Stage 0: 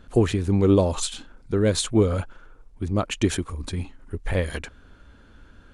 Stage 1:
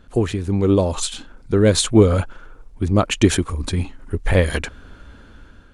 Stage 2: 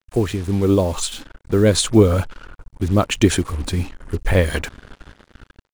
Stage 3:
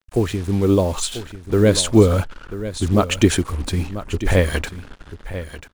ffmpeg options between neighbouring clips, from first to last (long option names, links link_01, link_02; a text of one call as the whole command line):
ffmpeg -i in.wav -af "dynaudnorm=framelen=430:gausssize=5:maxgain=11.5dB" out.wav
ffmpeg -i in.wav -af "acrusher=bits=5:mix=0:aa=0.5" out.wav
ffmpeg -i in.wav -af "aecho=1:1:990:0.224" out.wav